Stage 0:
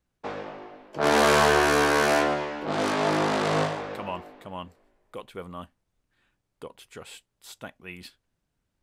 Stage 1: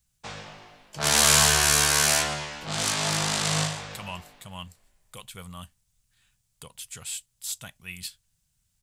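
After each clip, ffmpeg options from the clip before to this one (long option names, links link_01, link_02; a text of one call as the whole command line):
ffmpeg -i in.wav -af "firequalizer=gain_entry='entry(140,0);entry(290,-19);entry(420,-17);entry(740,-11);entry(3000,1);entry(7500,12);entry(14000,9)':delay=0.05:min_phase=1,volume=4.5dB" out.wav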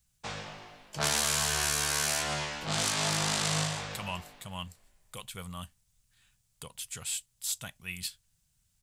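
ffmpeg -i in.wav -af "acompressor=threshold=-25dB:ratio=6" out.wav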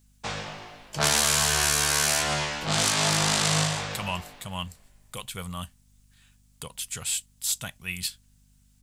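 ffmpeg -i in.wav -af "aeval=exprs='val(0)+0.000501*(sin(2*PI*50*n/s)+sin(2*PI*2*50*n/s)/2+sin(2*PI*3*50*n/s)/3+sin(2*PI*4*50*n/s)/4+sin(2*PI*5*50*n/s)/5)':channel_layout=same,volume=6dB" out.wav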